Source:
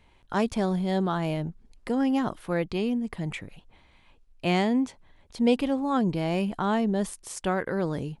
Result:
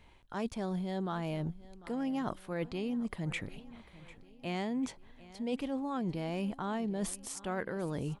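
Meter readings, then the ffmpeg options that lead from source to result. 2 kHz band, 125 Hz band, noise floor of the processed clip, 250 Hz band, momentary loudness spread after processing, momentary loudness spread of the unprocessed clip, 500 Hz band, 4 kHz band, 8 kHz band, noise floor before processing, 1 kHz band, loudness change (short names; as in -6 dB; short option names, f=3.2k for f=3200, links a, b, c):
-8.5 dB, -7.5 dB, -58 dBFS, -9.5 dB, 14 LU, 9 LU, -10.0 dB, -9.0 dB, -3.0 dB, -60 dBFS, -10.0 dB, -9.5 dB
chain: -af "areverse,acompressor=threshold=-33dB:ratio=5,areverse,aecho=1:1:747|1494|2241|2988:0.112|0.0561|0.0281|0.014"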